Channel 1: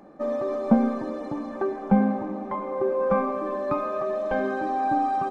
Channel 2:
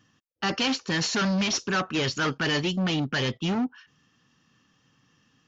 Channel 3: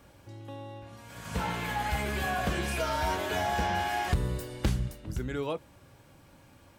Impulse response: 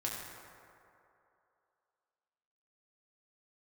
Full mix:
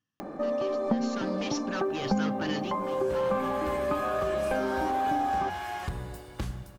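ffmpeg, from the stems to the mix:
-filter_complex "[0:a]acompressor=mode=upward:threshold=-30dB:ratio=2.5,adelay=200,volume=0.5dB[link_01];[1:a]volume=-10.5dB,afade=type=in:start_time=0.95:duration=0.4:silence=0.251189,afade=type=out:start_time=2.59:duration=0.28:silence=0.281838[link_02];[2:a]equalizer=frequency=1100:width=2.4:gain=6,acrusher=bits=9:mix=0:aa=0.000001,adelay=1750,volume=-9dB,asplit=2[link_03][link_04];[link_04]volume=-8.5dB[link_05];[link_01][link_03]amix=inputs=2:normalize=0,acompressor=threshold=-26dB:ratio=3,volume=0dB[link_06];[3:a]atrim=start_sample=2205[link_07];[link_05][link_07]afir=irnorm=-1:irlink=0[link_08];[link_02][link_06][link_08]amix=inputs=3:normalize=0"

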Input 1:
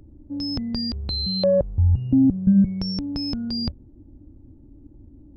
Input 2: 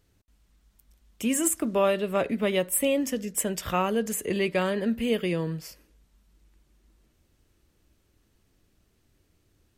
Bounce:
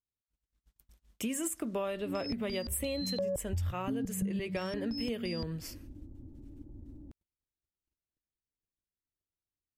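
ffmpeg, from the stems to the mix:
ffmpeg -i stem1.wav -i stem2.wav -filter_complex "[0:a]adelay=1750,volume=-2dB[link_01];[1:a]agate=range=-33dB:threshold=-59dB:ratio=16:detection=peak,volume=-1.5dB,asplit=2[link_02][link_03];[link_03]apad=whole_len=313752[link_04];[link_01][link_04]sidechaincompress=threshold=-28dB:ratio=8:attack=6.6:release=145[link_05];[link_05][link_02]amix=inputs=2:normalize=0,acompressor=threshold=-32dB:ratio=6" out.wav

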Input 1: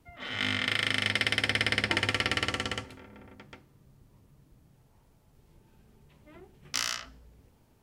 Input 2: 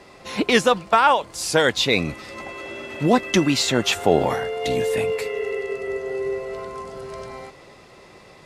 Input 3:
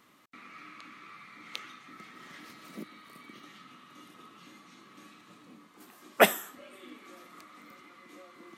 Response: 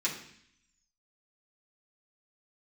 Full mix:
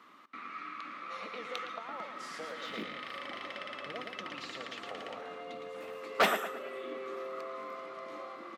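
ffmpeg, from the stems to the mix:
-filter_complex "[0:a]acompressor=threshold=-35dB:ratio=4,adelay=2350,volume=-7.5dB[link_01];[1:a]acompressor=threshold=-23dB:ratio=6,lowshelf=frequency=420:width_type=q:width=3:gain=-6.5,acrossover=split=300[link_02][link_03];[link_03]acompressor=threshold=-29dB:ratio=6[link_04];[link_02][link_04]amix=inputs=2:normalize=0,adelay=850,volume=-14dB,asplit=2[link_05][link_06];[link_06]volume=-6dB[link_07];[2:a]equalizer=frequency=1200:width=2.3:gain=7,volume=2dB,asplit=2[link_08][link_09];[link_09]volume=-17dB[link_10];[link_07][link_10]amix=inputs=2:normalize=0,aecho=0:1:112|224|336|448|560|672:1|0.41|0.168|0.0689|0.0283|0.0116[link_11];[link_01][link_05][link_08][link_11]amix=inputs=4:normalize=0,volume=20.5dB,asoftclip=hard,volume=-20.5dB,acrossover=split=180 5000:gain=0.0891 1 0.224[link_12][link_13][link_14];[link_12][link_13][link_14]amix=inputs=3:normalize=0"

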